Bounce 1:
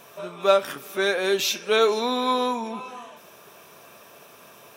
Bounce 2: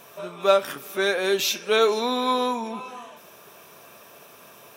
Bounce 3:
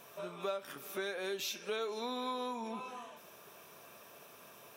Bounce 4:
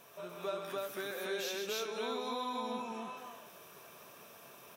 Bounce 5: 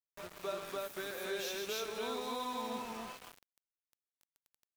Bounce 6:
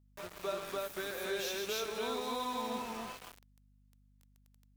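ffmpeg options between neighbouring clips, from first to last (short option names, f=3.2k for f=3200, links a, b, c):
-af "equalizer=f=14k:t=o:w=0.77:g=2.5"
-af "acompressor=threshold=-29dB:ratio=4,volume=-7.5dB"
-af "aecho=1:1:134.1|291.5:0.501|1,volume=-2.5dB"
-af "aeval=exprs='val(0)*gte(abs(val(0)),0.00708)':c=same,volume=-1dB"
-af "aeval=exprs='val(0)+0.000447*(sin(2*PI*50*n/s)+sin(2*PI*2*50*n/s)/2+sin(2*PI*3*50*n/s)/3+sin(2*PI*4*50*n/s)/4+sin(2*PI*5*50*n/s)/5)':c=same,volume=2dB"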